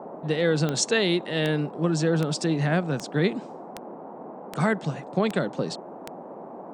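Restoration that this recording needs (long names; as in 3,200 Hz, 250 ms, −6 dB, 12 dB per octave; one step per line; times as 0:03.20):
click removal
noise reduction from a noise print 30 dB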